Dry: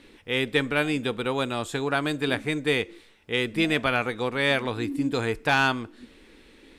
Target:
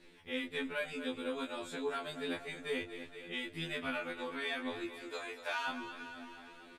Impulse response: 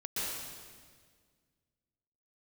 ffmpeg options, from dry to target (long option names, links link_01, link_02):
-filter_complex "[0:a]asettb=1/sr,asplit=3[link_01][link_02][link_03];[link_01]atrim=end=4.864[link_04];[link_02]atrim=start=4.86:end=5.69,asetpts=PTS-STARTPTS,afade=type=in:duration=0.004:curve=qsin,afade=type=out:start_time=0.826:duration=0.004:curve=qsin,highpass=frequency=510:width=0.5412,highpass=frequency=510:width=1.3066[link_05];[link_03]atrim=start=5.686[link_06];[link_04][link_05]acrossfade=duration=0.004:curve1=hsin:curve2=qsin[link_07];[link_07][link_06]acrossfade=duration=0.004:curve1=qsin:curve2=hsin,aecho=1:1:232|464|696|928|1160|1392:0.211|0.125|0.0736|0.0434|0.0256|0.0151,flanger=delay=17:depth=3.1:speed=1.2,acompressor=threshold=-41dB:ratio=1.5,afftfilt=real='re*2*eq(mod(b,4),0)':imag='im*2*eq(mod(b,4),0)':win_size=2048:overlap=0.75,volume=-2dB"